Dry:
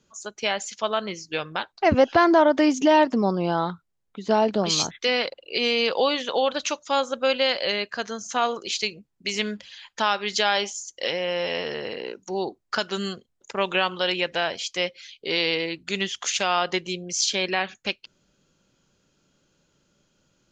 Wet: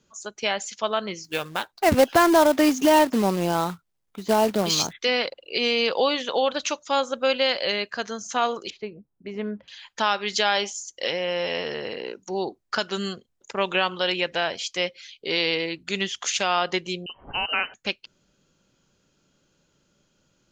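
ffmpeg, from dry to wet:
-filter_complex "[0:a]asettb=1/sr,asplit=3[a][b][c];[a]atrim=end=1.244[d];[b]atrim=start=1.24:end=4.93,asetpts=PTS-STARTPTS,afade=t=in:d=0.004:c=qsin,afade=t=out:st=3.686:d=0.004:c=qsin,acrusher=bits=3:mode=log:mix=0:aa=0.000001[e];[c]atrim=start=4.926[f];[d][e]acrossfade=d=0.004:c1=hsin:c2=qsin[g];[g][f]acrossfade=d=0.004:c1=qsin:c2=hsin,asettb=1/sr,asplit=3[h][i][j];[h]atrim=end=8.704[k];[i]atrim=start=8.7:end=9.68,asetpts=PTS-STARTPTS,afade=t=in:d=0.004:c=qsin,afade=t=out:st=0.976:d=0.004:c=qsin,lowpass=1k[l];[j]atrim=start=9.676[m];[k][l]acrossfade=d=0.004:c1=hsin:c2=qsin[n];[n][m]acrossfade=d=0.004:c1=qsin:c2=hsin,asettb=1/sr,asplit=3[o][p][q];[o]atrim=end=17.064[r];[p]atrim=start=17.06:end=17.74,asetpts=PTS-STARTPTS,afade=t=in:d=0.004:c=qsin,afade=t=out:st=0.676:d=0.004:c=qsin,lowpass=f=2.7k:t=q:w=0.5098,lowpass=f=2.7k:t=q:w=0.6013,lowpass=f=2.7k:t=q:w=0.9,lowpass=f=2.7k:t=q:w=2.563,afreqshift=-3200[s];[q]atrim=start=17.736[t];[r][s]acrossfade=d=0.004:c1=hsin:c2=qsin[u];[u][t]acrossfade=d=0.004:c1=qsin:c2=hsin"

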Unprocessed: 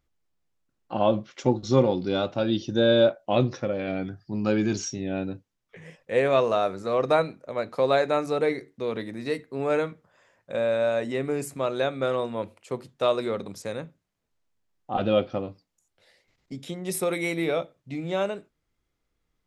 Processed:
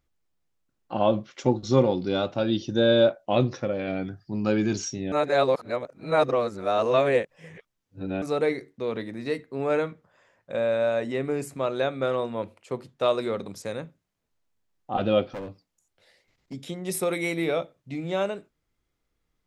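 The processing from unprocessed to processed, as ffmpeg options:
-filter_complex "[0:a]asettb=1/sr,asplit=3[a][b][c];[a]atrim=end=8.724[d];[b]atrim=start=8.72:end=13.06,asetpts=PTS-STARTPTS,afade=t=in:d=0.004:c=qsin,afade=t=out:st=4.336:d=0.004:c=qsin,highshelf=f=6.2k:g=-5.5[e];[c]atrim=start=13.056[f];[d][e]acrossfade=d=0.004:c1=hsin:c2=qsin[g];[g][f]acrossfade=d=0.004:c1=qsin:c2=hsin,asettb=1/sr,asplit=3[h][i][j];[h]atrim=end=15.334[k];[i]atrim=start=15.33:end=16.54,asetpts=PTS-STARTPTS,afade=t=in:d=0.004:c=qsin,afade=t=out:st=1.206:d=0.004:c=qsin,asoftclip=type=hard:threshold=-32dB[l];[j]atrim=start=16.536[m];[k][l]acrossfade=d=0.004:c1=hsin:c2=qsin[n];[n][m]acrossfade=d=0.004:c1=qsin:c2=hsin,asplit=3[o][p][q];[o]atrim=end=5.122[r];[p]atrim=start=5.118:end=8.222,asetpts=PTS-STARTPTS,areverse[s];[q]atrim=start=8.218[t];[r][s]acrossfade=d=0.004:c1=hsin:c2=hsin[u];[u][t]acrossfade=d=0.004:c1=hsin:c2=hsin"

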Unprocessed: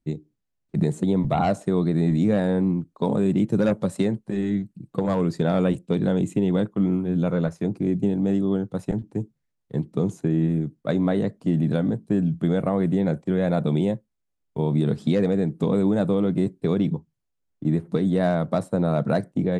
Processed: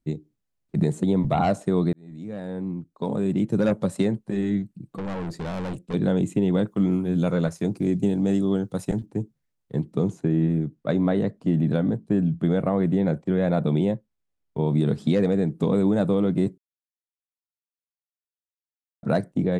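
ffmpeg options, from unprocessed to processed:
-filter_complex "[0:a]asettb=1/sr,asplit=3[a][b][c];[a]atrim=end=4.974[d];[b]atrim=start=4.97:end=5.94,asetpts=PTS-STARTPTS,afade=t=in:d=0.004:c=qsin,afade=t=out:st=0.966:d=0.004:c=qsin,aeval=exprs='(tanh(25.1*val(0)+0.4)-tanh(0.4))/25.1':c=same[e];[c]atrim=start=5.936[f];[d][e]acrossfade=d=0.004:c1=hsin:c2=qsin[g];[g][f]acrossfade=d=0.004:c1=qsin:c2=hsin,asettb=1/sr,asplit=3[h][i][j];[h]atrim=end=6.674[k];[i]atrim=start=6.67:end=9.06,asetpts=PTS-STARTPTS,afade=t=in:d=0.004:c=qsin,afade=t=out:st=2.386:d=0.004:c=qsin,highshelf=f=3.9k:g=10.5[l];[j]atrim=start=9.056[m];[k][l]acrossfade=d=0.004:c1=hsin:c2=qsin[n];[n][m]acrossfade=d=0.004:c1=qsin:c2=hsin,asettb=1/sr,asplit=3[o][p][q];[o]atrim=end=10.084[r];[p]atrim=start=10.08:end=14.67,asetpts=PTS-STARTPTS,afade=t=in:d=0.004:c=qsin,afade=t=out:st=4.586:d=0.004:c=qsin,highshelf=f=6.8k:g=-9[s];[q]atrim=start=14.666[t];[r][s]acrossfade=d=0.004:c1=hsin:c2=qsin[u];[u][t]acrossfade=d=0.004:c1=qsin:c2=hsin,asplit=4[v][w][x][y];[v]atrim=end=1.93,asetpts=PTS-STARTPTS,afade=t=out:st=1.926:d=0.004:c=hsin[z];[w]atrim=start=1.93:end=16.58,asetpts=PTS-STARTPTS,afade=t=in:d=1.87,afade=t=out:st=14.646:d=0.004:c=hsin[aa];[x]atrim=start=16.58:end=19.03,asetpts=PTS-STARTPTS,volume=0[ab];[y]atrim=start=19.03,asetpts=PTS-STARTPTS,afade=t=in:d=0.004:c=hsin[ac];[z][aa][ab][ac]concat=n=4:v=0:a=1"

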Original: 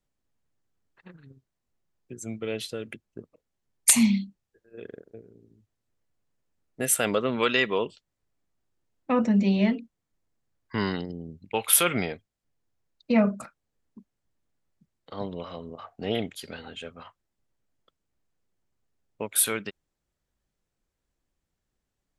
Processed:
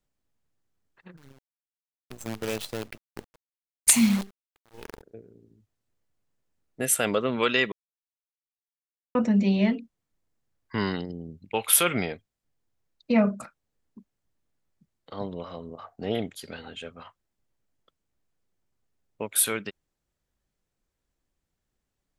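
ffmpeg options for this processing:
-filter_complex "[0:a]asettb=1/sr,asplit=3[a][b][c];[a]atrim=end=1.174[d];[b]atrim=start=1.17:end=5.02,asetpts=PTS-STARTPTS,afade=t=in:d=0.004:c=qsin,afade=t=out:st=3.846:d=0.004:c=qsin,acrusher=bits=6:dc=4:mix=0:aa=0.000001[e];[c]atrim=start=5.016[f];[d][e]acrossfade=d=0.004:c1=hsin:c2=qsin[g];[g][f]acrossfade=d=0.004:c1=qsin:c2=hsin,asettb=1/sr,asplit=3[h][i][j];[h]atrim=end=15.184[k];[i]atrim=start=15.18:end=16.46,asetpts=PTS-STARTPTS,afade=t=in:d=0.004:c=qsin,afade=t=out:st=1.276:d=0.004:c=qsin,equalizer=f=2.7k:w=1.6:g=-5[l];[j]atrim=start=16.456[m];[k][l]acrossfade=d=0.004:c1=hsin:c2=qsin[n];[n][m]acrossfade=d=0.004:c1=qsin:c2=hsin,asplit=3[o][p][q];[o]atrim=end=7.72,asetpts=PTS-STARTPTS,afade=t=out:st=7.716:d=0.004:c=hsin[r];[p]atrim=start=7.72:end=9.15,asetpts=PTS-STARTPTS,volume=0[s];[q]atrim=start=9.15,asetpts=PTS-STARTPTS,afade=t=in:d=0.004:c=hsin[t];[r][s][t]concat=n=3:v=0:a=1"

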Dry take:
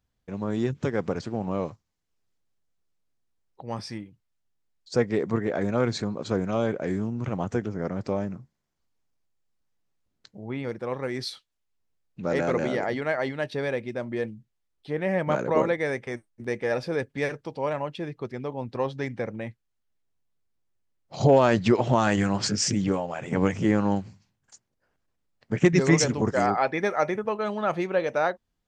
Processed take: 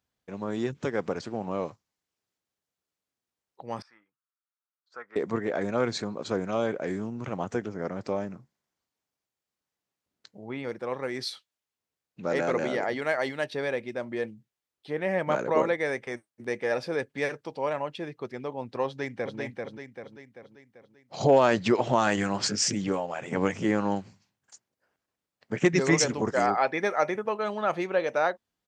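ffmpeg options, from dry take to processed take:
-filter_complex "[0:a]asettb=1/sr,asplit=3[a][b][c];[a]atrim=end=3.824[d];[b]atrim=start=3.82:end=5.16,asetpts=PTS-STARTPTS,afade=t=in:d=0.004:c=qsin,afade=t=out:st=1.336:d=0.004:c=qsin,bandpass=f=1.3k:t=q:w=5[e];[c]atrim=start=5.156[f];[d][e]acrossfade=d=0.004:c1=hsin:c2=qsin[g];[g][f]acrossfade=d=0.004:c1=qsin:c2=hsin,asettb=1/sr,asplit=3[h][i][j];[h]atrim=end=12.994[k];[i]atrim=start=12.99:end=13.45,asetpts=PTS-STARTPTS,afade=t=in:d=0.004:c=qsin,afade=t=out:st=0.456:d=0.004:c=qsin,highshelf=f=6.4k:g=12[l];[j]atrim=start=13.446[m];[k][l]acrossfade=d=0.004:c1=hsin:c2=qsin[n];[n][m]acrossfade=d=0.004:c1=qsin:c2=hsin,asplit=2[o][p];[p]afade=t=in:st=18.86:d=0.01,afade=t=out:st=19.38:d=0.01,aecho=0:1:390|780|1170|1560|1950|2340|2730:0.668344|0.334172|0.167086|0.083543|0.0417715|0.0208857|0.0104429[q];[o][q]amix=inputs=2:normalize=0,highpass=51,lowshelf=f=170:g=-12"

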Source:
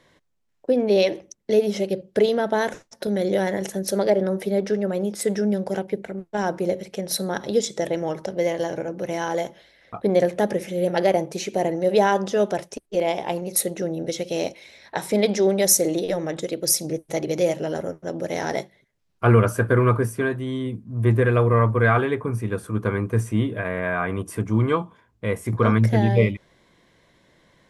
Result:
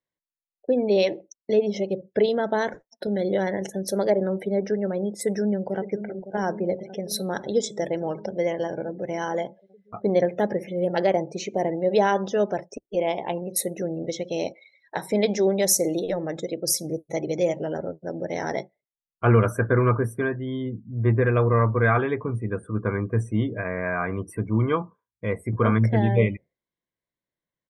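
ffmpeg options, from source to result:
-filter_complex "[0:a]asplit=2[a][b];[b]afade=t=in:st=5.24:d=0.01,afade=t=out:st=5.87:d=0.01,aecho=0:1:560|1120|1680|2240|2800|3360|3920|4480|5040|5600|6160|6720:0.266073|0.199554|0.149666|0.112249|0.084187|0.0631403|0.0473552|0.0355164|0.0266373|0.019978|0.0149835|0.0112376[c];[a][c]amix=inputs=2:normalize=0,afftdn=nr=32:nf=-39,highshelf=f=9.7k:g=-4,volume=-2dB"

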